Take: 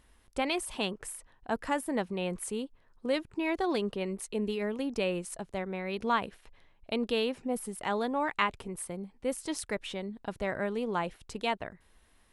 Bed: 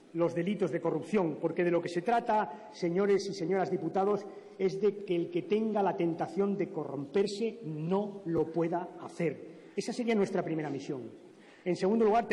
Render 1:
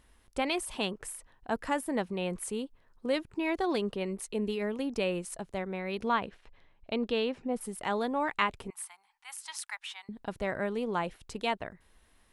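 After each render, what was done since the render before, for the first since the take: 6.08–7.61 s: distance through air 86 m; 8.70–10.09 s: elliptic high-pass 820 Hz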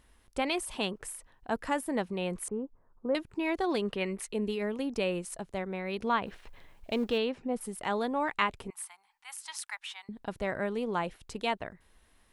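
2.48–3.15 s: low-pass 1.3 kHz 24 dB/octave; 3.85–4.29 s: peaking EQ 2 kHz +8.5 dB 1.4 oct; 6.26–7.18 s: companding laws mixed up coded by mu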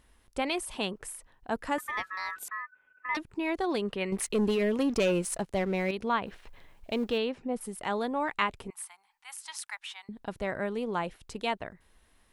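1.78–3.17 s: ring modulator 1.5 kHz; 4.12–5.91 s: waveshaping leveller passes 2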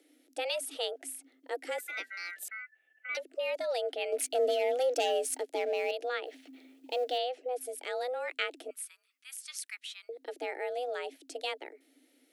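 frequency shift +250 Hz; static phaser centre 440 Hz, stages 4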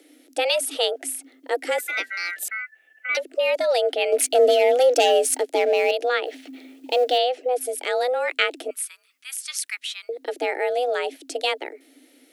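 trim +12 dB

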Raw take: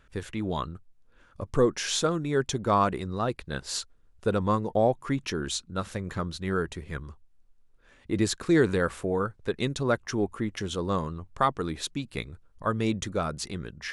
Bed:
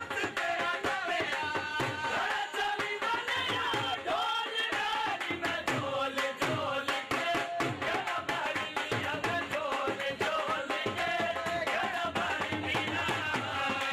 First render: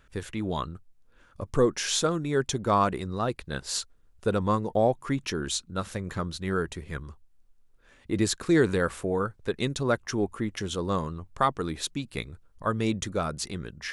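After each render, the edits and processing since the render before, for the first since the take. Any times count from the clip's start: treble shelf 7.2 kHz +4.5 dB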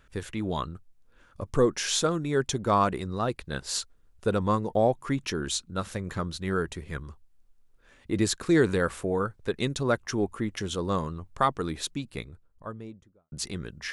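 11.70–13.32 s: studio fade out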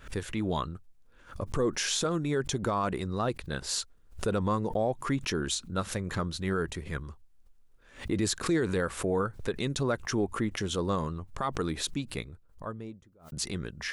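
peak limiter -19.5 dBFS, peak gain reduction 10 dB; swell ahead of each attack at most 150 dB/s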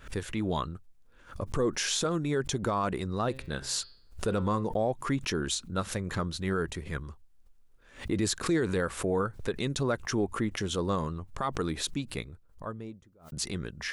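3.28–4.64 s: de-hum 132.1 Hz, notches 38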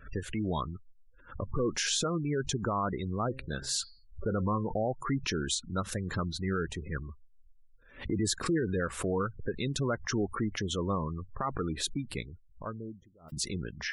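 spectral gate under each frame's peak -20 dB strong; dynamic bell 510 Hz, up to -3 dB, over -37 dBFS, Q 0.7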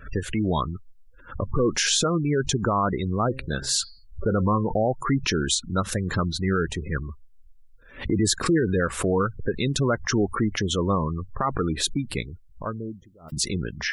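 trim +8 dB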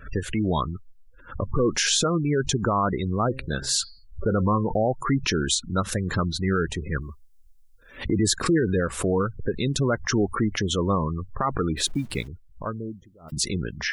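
7.01–8.04 s: tone controls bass -3 dB, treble +9 dB; 8.79–9.92 s: dynamic bell 1.7 kHz, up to -4 dB, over -39 dBFS, Q 0.8; 11.77–12.28 s: send-on-delta sampling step -47.5 dBFS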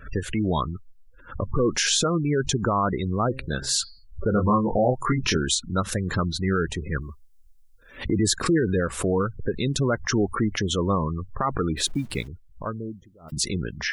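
4.31–5.37 s: doubling 24 ms -3 dB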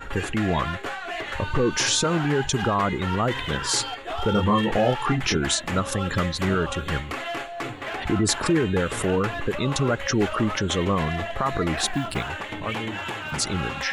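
add bed 0 dB

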